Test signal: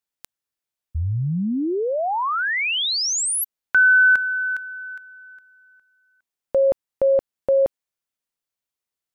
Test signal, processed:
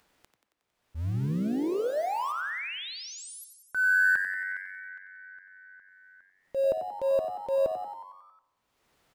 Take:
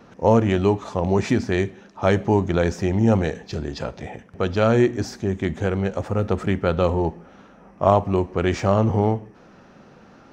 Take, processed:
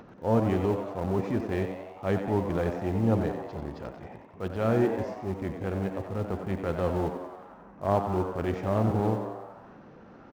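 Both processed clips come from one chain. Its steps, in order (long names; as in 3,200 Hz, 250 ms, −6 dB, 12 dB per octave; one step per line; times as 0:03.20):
low-pass filter 1,400 Hz 6 dB per octave
in parallel at −11 dB: centre clipping without the shift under −22 dBFS
on the sum: upward compression, threshold −33 dBFS
transient designer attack −8 dB, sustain −4 dB
on a send: echo with shifted repeats 91 ms, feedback 62%, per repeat +94 Hz, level −9 dB
on the sum: spring reverb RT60 1 s, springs 54 ms, chirp 75 ms, DRR 15.5 dB
level −8 dB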